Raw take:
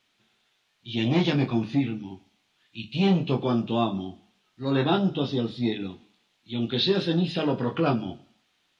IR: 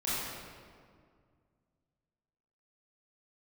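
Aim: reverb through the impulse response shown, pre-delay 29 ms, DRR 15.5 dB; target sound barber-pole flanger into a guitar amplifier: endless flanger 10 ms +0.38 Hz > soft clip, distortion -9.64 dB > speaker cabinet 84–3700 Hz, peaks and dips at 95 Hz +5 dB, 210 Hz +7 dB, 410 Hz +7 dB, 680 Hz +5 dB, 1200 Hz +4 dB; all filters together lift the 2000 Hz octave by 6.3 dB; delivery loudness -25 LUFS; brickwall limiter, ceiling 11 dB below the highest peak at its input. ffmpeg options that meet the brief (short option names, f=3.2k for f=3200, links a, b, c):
-filter_complex "[0:a]equalizer=f=2k:t=o:g=8,alimiter=limit=-21dB:level=0:latency=1,asplit=2[a][b];[1:a]atrim=start_sample=2205,adelay=29[c];[b][c]afir=irnorm=-1:irlink=0,volume=-23dB[d];[a][d]amix=inputs=2:normalize=0,asplit=2[e][f];[f]adelay=10,afreqshift=0.38[g];[e][g]amix=inputs=2:normalize=1,asoftclip=threshold=-33.5dB,highpass=84,equalizer=f=95:t=q:w=4:g=5,equalizer=f=210:t=q:w=4:g=7,equalizer=f=410:t=q:w=4:g=7,equalizer=f=680:t=q:w=4:g=5,equalizer=f=1.2k:t=q:w=4:g=4,lowpass=f=3.7k:w=0.5412,lowpass=f=3.7k:w=1.3066,volume=11dB"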